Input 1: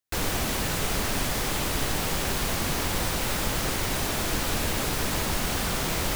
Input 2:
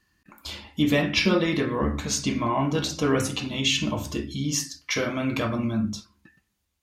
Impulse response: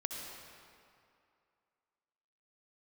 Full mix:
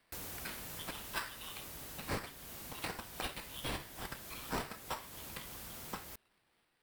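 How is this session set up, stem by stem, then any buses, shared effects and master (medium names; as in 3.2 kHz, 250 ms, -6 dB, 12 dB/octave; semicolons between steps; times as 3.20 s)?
-18.0 dB, 0.00 s, send -9 dB, high-pass 41 Hz; peaking EQ 15 kHz +11.5 dB 0.98 oct; auto duck -11 dB, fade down 1.75 s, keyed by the second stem
+1.0 dB, 0.00 s, no send, inverse Chebyshev high-pass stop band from 1.8 kHz, stop band 50 dB; treble shelf 11 kHz +9 dB; sample-rate reducer 6.6 kHz, jitter 0%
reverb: on, RT60 2.5 s, pre-delay 58 ms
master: compression 2:1, threshold -44 dBFS, peak gain reduction 12.5 dB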